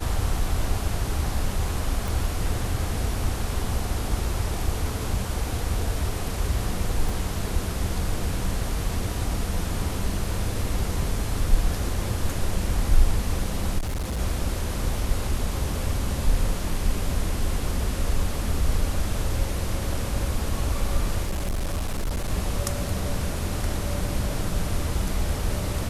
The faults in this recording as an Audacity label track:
2.080000	2.080000	pop
7.090000	7.090000	dropout 3.3 ms
13.780000	14.200000	clipped -24.5 dBFS
21.240000	22.310000	clipped -22.5 dBFS

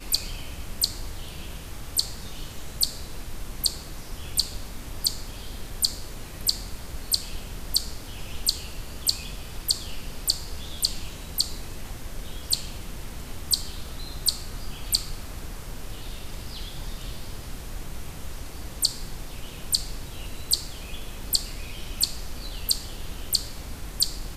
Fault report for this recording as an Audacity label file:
21.240000	21.240000	dropout 2.6 ms

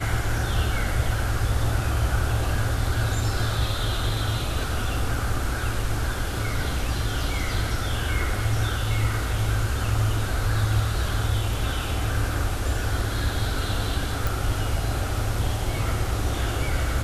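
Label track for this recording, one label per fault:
14.270000	14.270000	pop

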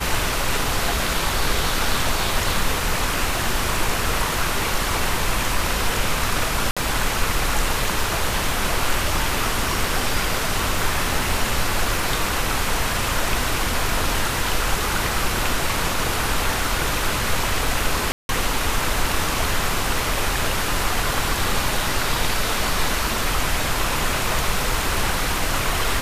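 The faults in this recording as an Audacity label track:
6.710000	6.770000	dropout 56 ms
18.120000	18.290000	dropout 171 ms

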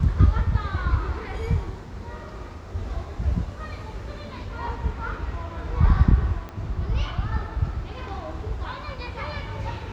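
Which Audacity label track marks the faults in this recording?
6.490000	6.490000	pop -23 dBFS

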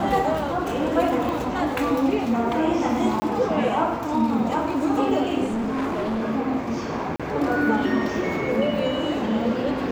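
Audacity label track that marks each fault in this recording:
1.290000	1.290000	pop
3.200000	3.220000	dropout 20 ms
5.440000	6.250000	clipped -22.5 dBFS
7.160000	7.200000	dropout 36 ms

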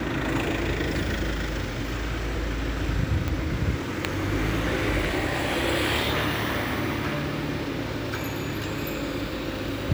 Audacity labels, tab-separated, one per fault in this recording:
3.280000	3.280000	pop -13 dBFS

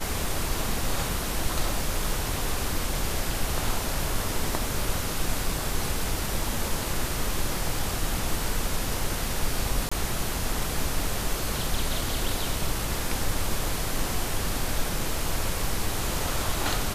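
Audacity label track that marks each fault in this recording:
9.890000	9.910000	dropout 25 ms

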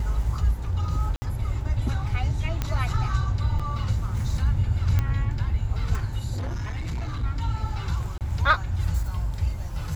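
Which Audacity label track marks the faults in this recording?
1.160000	1.220000	dropout 60 ms
2.620000	2.620000	pop -12 dBFS
3.590000	3.600000	dropout 5.8 ms
4.990000	4.990000	pop -12 dBFS
6.330000	7.240000	clipped -26 dBFS
8.180000	8.210000	dropout 28 ms

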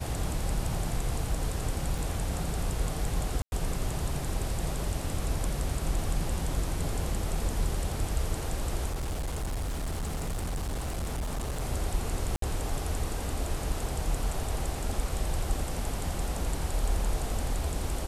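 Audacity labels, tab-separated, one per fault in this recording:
1.980000	1.980000	dropout 4.2 ms
3.420000	3.520000	dropout 101 ms
8.880000	11.620000	clipped -28.5 dBFS
12.360000	12.420000	dropout 63 ms

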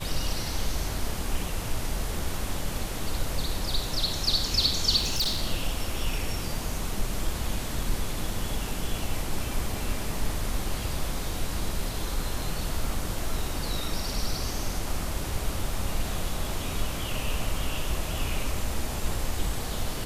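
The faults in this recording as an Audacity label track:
4.960000	5.420000	clipped -22.5 dBFS

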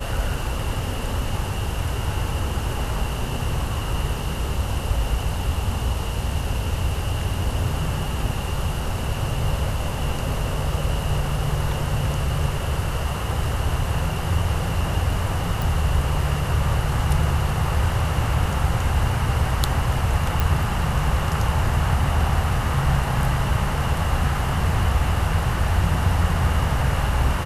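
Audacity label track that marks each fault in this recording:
15.620000	15.620000	pop
20.400000	20.400000	pop

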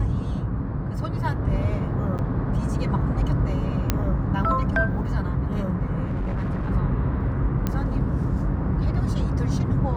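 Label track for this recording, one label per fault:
2.180000	2.190000	dropout 8.8 ms
3.900000	3.900000	pop -6 dBFS
6.040000	6.710000	clipped -22.5 dBFS
7.670000	7.670000	pop -12 dBFS

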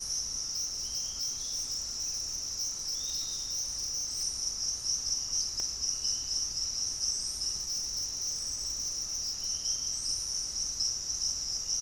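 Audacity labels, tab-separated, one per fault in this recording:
0.500000	4.240000	clipped -30 dBFS
5.600000	5.600000	pop -23 dBFS
7.570000	9.470000	clipped -29.5 dBFS

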